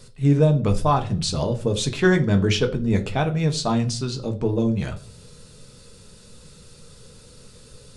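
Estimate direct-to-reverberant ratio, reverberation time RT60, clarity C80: 4.5 dB, 0.40 s, 19.5 dB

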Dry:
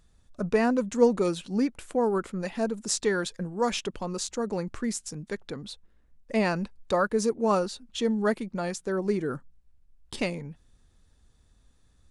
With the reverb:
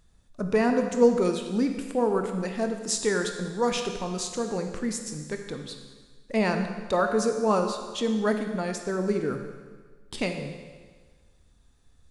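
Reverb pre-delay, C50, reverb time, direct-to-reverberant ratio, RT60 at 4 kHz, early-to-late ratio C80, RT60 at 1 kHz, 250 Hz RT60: 22 ms, 6.0 dB, 1.5 s, 5.0 dB, 1.5 s, 7.5 dB, 1.5 s, 1.5 s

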